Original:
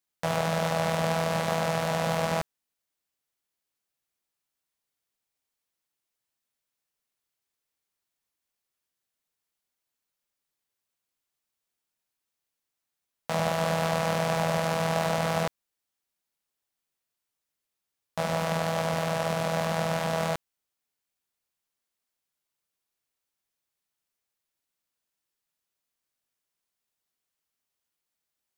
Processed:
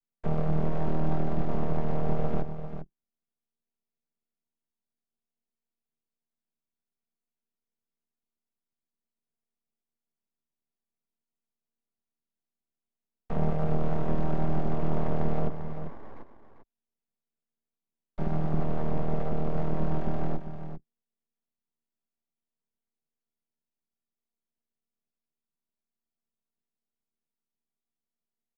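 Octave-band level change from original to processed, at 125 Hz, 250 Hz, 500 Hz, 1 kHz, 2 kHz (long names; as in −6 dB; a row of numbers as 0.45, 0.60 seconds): +1.5, +1.5, −6.0, −8.0, −15.5 decibels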